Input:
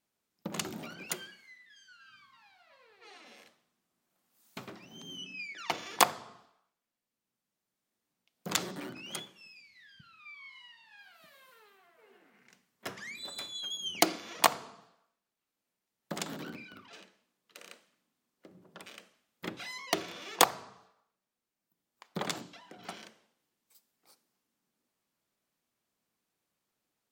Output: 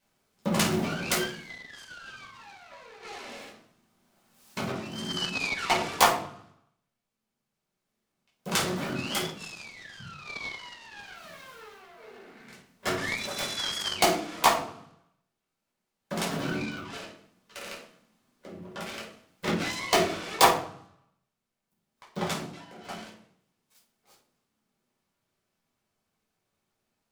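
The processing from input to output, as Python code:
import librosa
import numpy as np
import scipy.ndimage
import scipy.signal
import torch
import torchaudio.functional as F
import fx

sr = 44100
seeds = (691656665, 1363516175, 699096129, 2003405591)

y = fx.rider(x, sr, range_db=4, speed_s=0.5)
y = fx.room_shoebox(y, sr, seeds[0], volume_m3=420.0, walls='furnished', distance_m=5.2)
y = fx.noise_mod_delay(y, sr, seeds[1], noise_hz=1600.0, depth_ms=0.031)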